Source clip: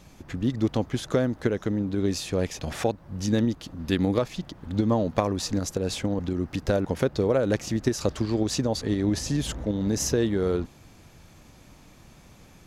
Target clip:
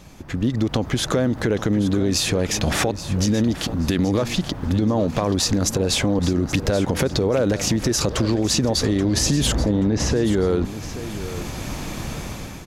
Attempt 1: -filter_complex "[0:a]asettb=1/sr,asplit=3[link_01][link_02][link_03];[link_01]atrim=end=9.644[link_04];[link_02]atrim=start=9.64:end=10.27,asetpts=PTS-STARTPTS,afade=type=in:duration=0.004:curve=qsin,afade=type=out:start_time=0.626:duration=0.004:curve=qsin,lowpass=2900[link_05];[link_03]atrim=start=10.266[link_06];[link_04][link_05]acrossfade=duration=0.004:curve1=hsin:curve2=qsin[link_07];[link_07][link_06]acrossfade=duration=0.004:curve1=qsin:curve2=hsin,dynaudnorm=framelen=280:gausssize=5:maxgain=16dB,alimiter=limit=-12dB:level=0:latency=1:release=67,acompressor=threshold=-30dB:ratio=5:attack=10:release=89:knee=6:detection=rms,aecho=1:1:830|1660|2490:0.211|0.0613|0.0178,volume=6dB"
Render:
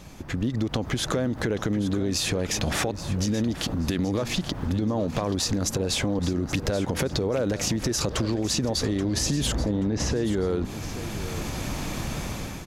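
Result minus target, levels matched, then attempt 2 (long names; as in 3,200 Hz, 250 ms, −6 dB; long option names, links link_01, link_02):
downward compressor: peak gain reduction +6 dB
-filter_complex "[0:a]asettb=1/sr,asplit=3[link_01][link_02][link_03];[link_01]atrim=end=9.644[link_04];[link_02]atrim=start=9.64:end=10.27,asetpts=PTS-STARTPTS,afade=type=in:duration=0.004:curve=qsin,afade=type=out:start_time=0.626:duration=0.004:curve=qsin,lowpass=2900[link_05];[link_03]atrim=start=10.266[link_06];[link_04][link_05]acrossfade=duration=0.004:curve1=hsin:curve2=qsin[link_07];[link_07][link_06]acrossfade=duration=0.004:curve1=qsin:curve2=hsin,dynaudnorm=framelen=280:gausssize=5:maxgain=16dB,alimiter=limit=-12dB:level=0:latency=1:release=67,acompressor=threshold=-22.5dB:ratio=5:attack=10:release=89:knee=6:detection=rms,aecho=1:1:830|1660|2490:0.211|0.0613|0.0178,volume=6dB"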